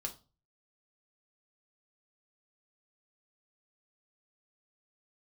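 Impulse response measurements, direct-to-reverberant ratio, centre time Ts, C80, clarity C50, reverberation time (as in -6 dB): 2.5 dB, 10 ms, 21.0 dB, 14.5 dB, 0.35 s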